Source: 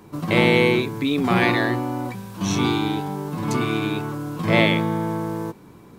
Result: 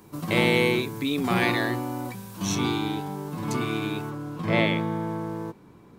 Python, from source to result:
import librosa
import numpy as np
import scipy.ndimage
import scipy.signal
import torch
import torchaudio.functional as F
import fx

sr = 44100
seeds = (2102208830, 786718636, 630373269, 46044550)

y = fx.high_shelf(x, sr, hz=5800.0, db=fx.steps((0.0, 9.5), (2.54, 3.0), (4.09, -7.0)))
y = y * 10.0 ** (-5.0 / 20.0)